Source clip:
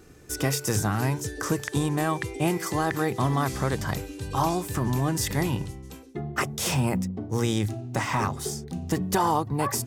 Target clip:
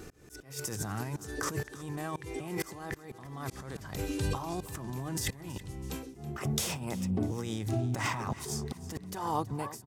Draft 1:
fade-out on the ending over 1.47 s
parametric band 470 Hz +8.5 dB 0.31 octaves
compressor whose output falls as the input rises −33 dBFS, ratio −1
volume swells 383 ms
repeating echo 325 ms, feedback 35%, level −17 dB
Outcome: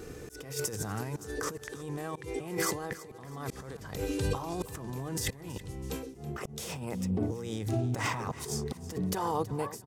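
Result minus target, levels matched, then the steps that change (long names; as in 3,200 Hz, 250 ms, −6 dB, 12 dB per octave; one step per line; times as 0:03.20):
500 Hz band +3.0 dB
remove: parametric band 470 Hz +8.5 dB 0.31 octaves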